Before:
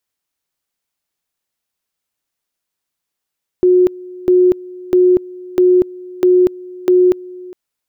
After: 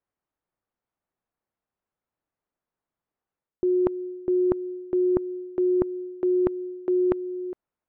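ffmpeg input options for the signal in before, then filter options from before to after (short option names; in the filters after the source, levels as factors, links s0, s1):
-f lavfi -i "aevalsrc='pow(10,(-6.5-22*gte(mod(t,0.65),0.24))/20)*sin(2*PI*363*t)':d=3.9:s=44100"
-af "lowpass=1200,areverse,acompressor=threshold=0.0708:ratio=4,areverse"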